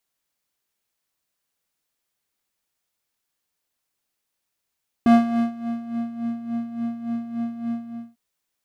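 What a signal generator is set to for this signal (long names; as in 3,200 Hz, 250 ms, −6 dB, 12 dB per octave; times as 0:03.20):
subtractive patch with tremolo A#3, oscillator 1 square, interval +19 semitones, oscillator 2 level −15.5 dB, sub −23 dB, noise −13.5 dB, filter bandpass, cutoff 160 Hz, Q 0.78, filter envelope 1.5 octaves, filter decay 1.29 s, filter sustain 25%, attack 1.1 ms, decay 0.45 s, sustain −16 dB, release 0.41 s, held 2.69 s, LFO 3.5 Hz, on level 10.5 dB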